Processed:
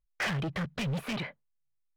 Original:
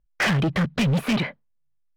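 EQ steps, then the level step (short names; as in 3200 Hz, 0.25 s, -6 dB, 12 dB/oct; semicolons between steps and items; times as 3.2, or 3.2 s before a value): bell 240 Hz -5 dB 0.94 oct; -9.0 dB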